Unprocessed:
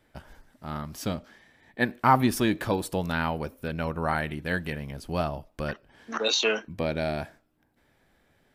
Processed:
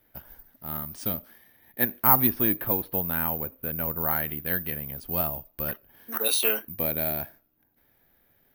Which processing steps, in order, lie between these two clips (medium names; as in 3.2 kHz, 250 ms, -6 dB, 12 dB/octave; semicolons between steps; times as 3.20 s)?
2.27–4.07 s: Bessel low-pass 2.6 kHz, order 4; careless resampling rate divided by 3×, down filtered, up zero stuff; trim -4 dB